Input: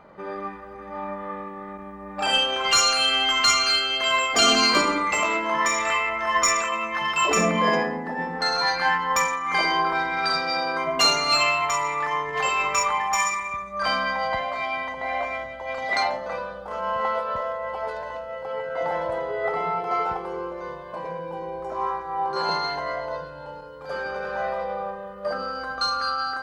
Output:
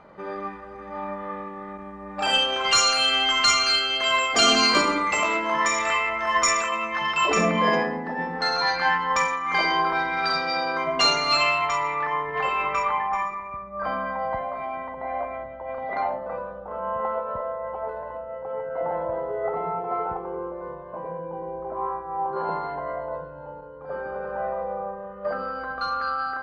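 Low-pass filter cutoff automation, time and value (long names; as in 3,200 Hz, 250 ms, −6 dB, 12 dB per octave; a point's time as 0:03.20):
0:06.62 9,000 Hz
0:07.34 5,400 Hz
0:11.59 5,400 Hz
0:12.15 2,300 Hz
0:12.90 2,300 Hz
0:13.30 1,100 Hz
0:24.90 1,100 Hz
0:25.32 2,300 Hz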